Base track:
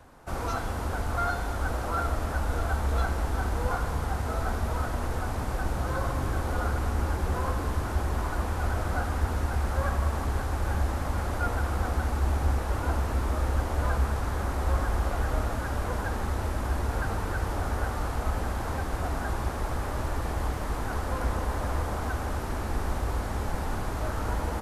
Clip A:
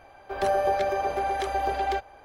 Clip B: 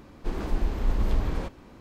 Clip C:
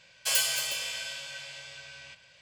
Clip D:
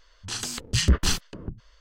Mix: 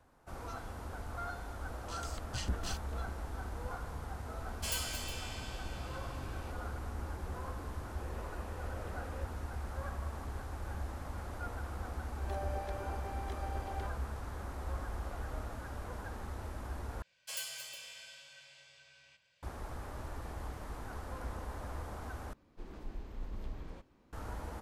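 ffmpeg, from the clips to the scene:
-filter_complex "[3:a]asplit=2[s0][s1];[2:a]asplit=2[s2][s3];[0:a]volume=0.224[s4];[s2]asplit=3[s5][s6][s7];[s5]bandpass=f=530:t=q:w=8,volume=1[s8];[s6]bandpass=f=1840:t=q:w=8,volume=0.501[s9];[s7]bandpass=f=2480:t=q:w=8,volume=0.355[s10];[s8][s9][s10]amix=inputs=3:normalize=0[s11];[s4]asplit=3[s12][s13][s14];[s12]atrim=end=17.024[s15];[s1]atrim=end=2.41,asetpts=PTS-STARTPTS,volume=0.178[s16];[s13]atrim=start=19.426:end=22.334[s17];[s3]atrim=end=1.8,asetpts=PTS-STARTPTS,volume=0.133[s18];[s14]atrim=start=24.126[s19];[4:a]atrim=end=1.8,asetpts=PTS-STARTPTS,volume=0.141,afade=t=in:d=0.004:c=hsin,afade=t=out:st=1.796:d=0.004:c=hsin,adelay=1600[s20];[s0]atrim=end=2.41,asetpts=PTS-STARTPTS,volume=0.266,afade=t=in:d=0.004:c=hsin,afade=t=out:st=2.406:d=0.004:c=hsin,adelay=192717S[s21];[s11]atrim=end=1.8,asetpts=PTS-STARTPTS,volume=0.668,afade=t=in:d=0.004:c=hsin,afade=t=out:st=1.796:d=0.004:c=hsin,adelay=7760[s22];[1:a]atrim=end=2.24,asetpts=PTS-STARTPTS,volume=0.126,afade=t=in:d=0.004:c=hsin,afade=t=out:st=2.236:d=0.004:c=hsin,adelay=11880[s23];[s15][s16]acrossfade=d=0.004:c1=hsin:c2=hsin[s24];[s24][s17]acrossfade=d=0.004:c1=hsin:c2=hsin[s25];[s25][s18]acrossfade=d=0.004:c1=hsin:c2=hsin[s26];[s26][s19]acrossfade=d=0.004:c1=hsin:c2=hsin[s27];[s27][s20][s21][s22][s23]amix=inputs=5:normalize=0"

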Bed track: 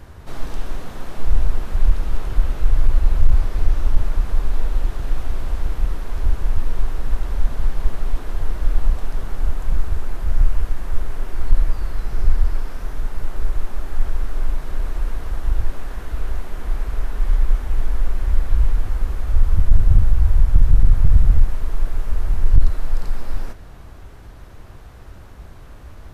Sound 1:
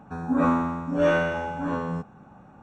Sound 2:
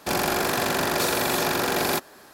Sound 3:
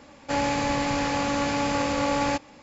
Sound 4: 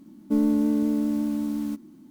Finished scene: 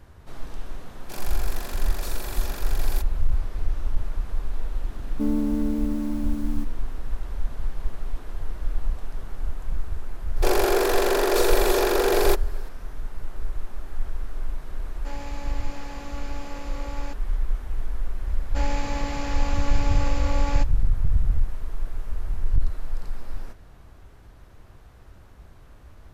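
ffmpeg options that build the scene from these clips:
-filter_complex "[2:a]asplit=2[s0][s1];[3:a]asplit=2[s2][s3];[0:a]volume=0.376[s4];[s0]highshelf=f=5000:g=6.5[s5];[s1]highpass=f=410:t=q:w=4.5[s6];[s5]atrim=end=2.33,asetpts=PTS-STARTPTS,volume=0.168,afade=t=in:d=0.004:c=hsin,afade=t=out:st=2.326:d=0.004:c=hsin,adelay=1030[s7];[4:a]atrim=end=2.1,asetpts=PTS-STARTPTS,volume=0.708,afade=t=in:d=0.004:c=hsin,afade=t=out:st=2.096:d=0.004:c=hsin,adelay=215649S[s8];[s6]atrim=end=2.33,asetpts=PTS-STARTPTS,volume=0.75,afade=t=in:d=0.004:c=hsin,afade=t=out:st=2.326:d=0.004:c=hsin,adelay=10360[s9];[s2]atrim=end=2.62,asetpts=PTS-STARTPTS,volume=0.188,afade=t=in:d=0.004:c=hsin,afade=t=out:st=2.616:d=0.004:c=hsin,adelay=650916S[s10];[s3]atrim=end=2.62,asetpts=PTS-STARTPTS,volume=0.473,afade=t=in:d=0.004:c=hsin,afade=t=out:st=2.616:d=0.004:c=hsin,adelay=18260[s11];[s4][s7][s8][s9][s10][s11]amix=inputs=6:normalize=0"

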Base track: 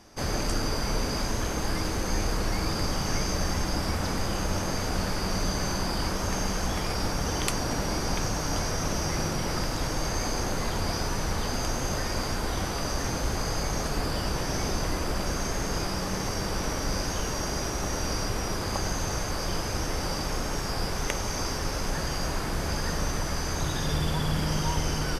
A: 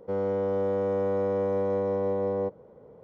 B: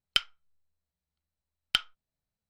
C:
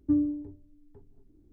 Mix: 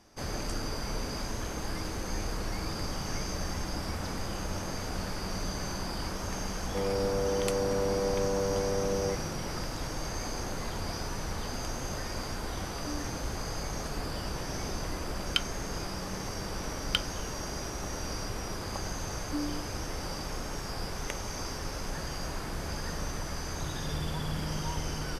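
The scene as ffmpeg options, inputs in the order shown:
-filter_complex "[3:a]asplit=2[s0][s1];[0:a]volume=0.473[s2];[1:a]atrim=end=3.03,asetpts=PTS-STARTPTS,volume=0.668,afade=t=in:d=0.004:c=hsin,afade=t=out:st=3.026:d=0.004:c=hsin,adelay=293706S[s3];[s0]atrim=end=1.52,asetpts=PTS-STARTPTS,volume=0.141,afade=t=in:d=0.004:c=hsin,afade=t=out:st=1.516:d=0.004:c=hsin,adelay=12780[s4];[2:a]atrim=end=2.49,asetpts=PTS-STARTPTS,volume=0.708,afade=t=in:d=0.004:c=hsin,afade=t=out:st=2.486:d=0.004:c=hsin,adelay=15200[s5];[s1]atrim=end=1.52,asetpts=PTS-STARTPTS,volume=0.335,afade=t=in:d=0.004:c=hsin,afade=t=out:st=1.516:d=0.004:c=hsin,adelay=848484S[s6];[s2][s3][s4][s5][s6]amix=inputs=5:normalize=0"

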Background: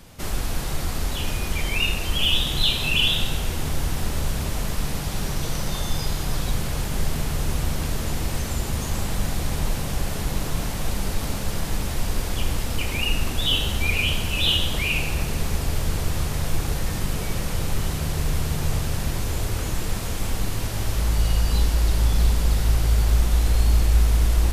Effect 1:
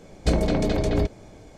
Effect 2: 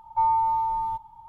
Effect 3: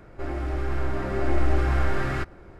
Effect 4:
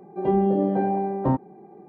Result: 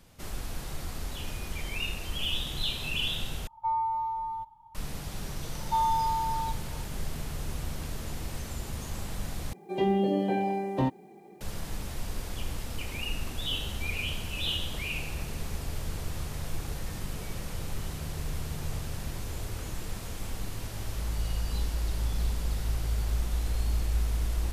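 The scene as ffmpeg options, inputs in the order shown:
-filter_complex "[2:a]asplit=2[s0][s1];[0:a]volume=0.299[s2];[4:a]aexciter=amount=10.9:drive=4.8:freq=2100[s3];[s2]asplit=3[s4][s5][s6];[s4]atrim=end=3.474[s7];[s0]atrim=end=1.28,asetpts=PTS-STARTPTS,volume=0.447[s8];[s5]atrim=start=4.746:end=9.534[s9];[s3]atrim=end=1.88,asetpts=PTS-STARTPTS,volume=0.562[s10];[s6]atrim=start=11.406[s11];[s1]atrim=end=1.28,asetpts=PTS-STARTPTS,volume=0.596,afade=t=in:d=0.004:c=hsin,afade=t=out:st=1.276:d=0.004:c=hsin,adelay=5550[s12];[s7][s8]acrossfade=d=0.004:c1=hsin:c2=hsin[s13];[s13][s9]acrossfade=d=0.004:c1=hsin:c2=hsin[s14];[s14][s10]acrossfade=d=0.004:c1=hsin:c2=hsin[s15];[s15][s11]acrossfade=d=0.004:c1=hsin:c2=hsin[s16];[s16][s12]amix=inputs=2:normalize=0"

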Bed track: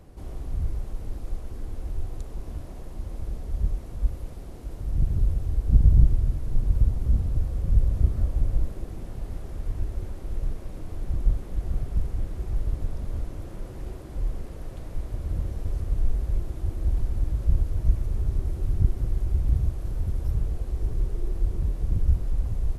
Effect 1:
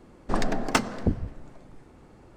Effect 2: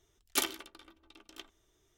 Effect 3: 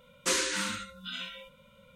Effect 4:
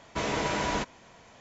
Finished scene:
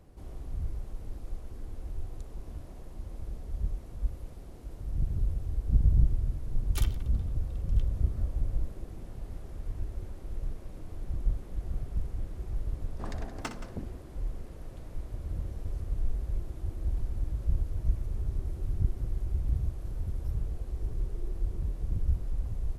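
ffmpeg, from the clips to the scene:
-filter_complex "[0:a]volume=0.473[s0];[1:a]aecho=1:1:61|174:0.282|0.2[s1];[2:a]atrim=end=1.97,asetpts=PTS-STARTPTS,volume=0.316,afade=t=in:d=0.004:c=hsin,afade=t=out:st=1.966:d=0.004:c=hsin,adelay=6400[s2];[s1]atrim=end=2.36,asetpts=PTS-STARTPTS,volume=0.178,afade=t=in:d=0.004:c=hsin,afade=t=out:st=2.356:d=0.004:c=hsin,adelay=12700[s3];[s0][s2][s3]amix=inputs=3:normalize=0"

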